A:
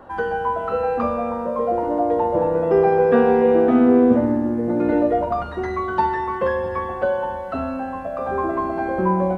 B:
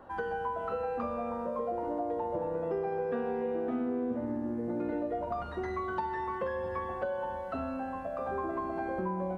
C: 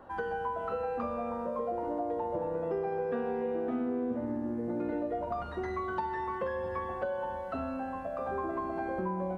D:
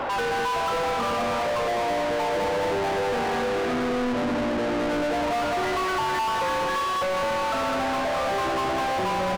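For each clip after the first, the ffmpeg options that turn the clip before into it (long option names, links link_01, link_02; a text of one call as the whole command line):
ffmpeg -i in.wav -af "acompressor=threshold=-22dB:ratio=5,volume=-8.5dB" out.wav
ffmpeg -i in.wav -af anull out.wav
ffmpeg -i in.wav -filter_complex "[0:a]aecho=1:1:206|412|618|824|1030|1236|1442|1648:0.631|0.366|0.212|0.123|0.0714|0.0414|0.024|0.0139,asplit=2[link_01][link_02];[link_02]highpass=frequency=720:poles=1,volume=39dB,asoftclip=type=tanh:threshold=-19.5dB[link_03];[link_01][link_03]amix=inputs=2:normalize=0,lowpass=frequency=3600:poles=1,volume=-6dB" out.wav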